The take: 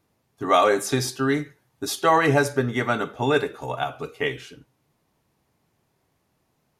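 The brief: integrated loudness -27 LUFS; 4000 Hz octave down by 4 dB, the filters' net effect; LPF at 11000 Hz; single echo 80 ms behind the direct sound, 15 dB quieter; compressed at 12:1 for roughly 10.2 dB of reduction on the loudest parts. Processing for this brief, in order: LPF 11000 Hz; bell 4000 Hz -5 dB; compressor 12:1, threshold -24 dBFS; echo 80 ms -15 dB; gain +3.5 dB

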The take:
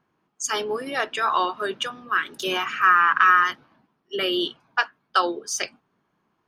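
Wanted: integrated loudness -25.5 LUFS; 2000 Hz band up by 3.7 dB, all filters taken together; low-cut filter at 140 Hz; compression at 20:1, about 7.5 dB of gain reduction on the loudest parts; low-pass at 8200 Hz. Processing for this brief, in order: HPF 140 Hz; LPF 8200 Hz; bell 2000 Hz +5 dB; compressor 20:1, threshold -16 dBFS; gain -1.5 dB

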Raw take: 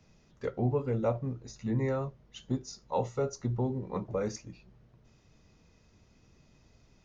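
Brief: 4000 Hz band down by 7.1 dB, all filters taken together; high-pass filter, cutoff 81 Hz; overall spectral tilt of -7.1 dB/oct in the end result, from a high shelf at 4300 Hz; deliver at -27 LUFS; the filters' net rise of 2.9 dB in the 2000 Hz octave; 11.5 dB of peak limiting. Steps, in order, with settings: HPF 81 Hz; bell 2000 Hz +6.5 dB; bell 4000 Hz -7 dB; high shelf 4300 Hz -8 dB; gain +12.5 dB; limiter -17 dBFS

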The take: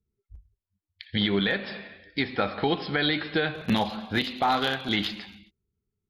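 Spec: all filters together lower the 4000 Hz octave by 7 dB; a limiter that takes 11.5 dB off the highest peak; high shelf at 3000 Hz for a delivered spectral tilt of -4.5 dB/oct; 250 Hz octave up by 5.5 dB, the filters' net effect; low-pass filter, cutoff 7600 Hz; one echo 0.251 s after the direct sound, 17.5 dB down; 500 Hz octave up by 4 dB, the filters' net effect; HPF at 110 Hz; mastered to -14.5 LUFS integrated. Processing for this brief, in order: HPF 110 Hz; LPF 7600 Hz; bell 250 Hz +6.5 dB; bell 500 Hz +3 dB; high shelf 3000 Hz -4.5 dB; bell 4000 Hz -5.5 dB; limiter -21 dBFS; echo 0.251 s -17.5 dB; gain +17 dB

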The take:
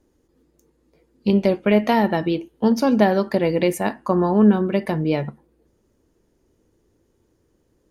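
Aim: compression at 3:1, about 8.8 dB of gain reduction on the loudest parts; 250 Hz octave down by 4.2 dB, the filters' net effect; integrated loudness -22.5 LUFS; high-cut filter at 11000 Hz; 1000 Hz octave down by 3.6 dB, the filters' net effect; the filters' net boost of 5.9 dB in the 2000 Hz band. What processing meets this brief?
LPF 11000 Hz; bell 250 Hz -5.5 dB; bell 1000 Hz -6 dB; bell 2000 Hz +8.5 dB; compressor 3:1, threshold -25 dBFS; gain +6 dB

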